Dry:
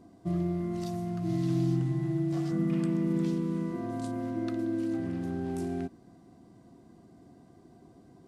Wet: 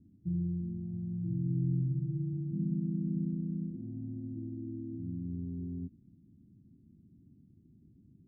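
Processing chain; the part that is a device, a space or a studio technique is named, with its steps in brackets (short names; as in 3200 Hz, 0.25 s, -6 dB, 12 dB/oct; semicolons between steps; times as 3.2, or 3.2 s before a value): the neighbour's flat through the wall (LPF 240 Hz 24 dB/oct; bell 86 Hz +4 dB); gain -2.5 dB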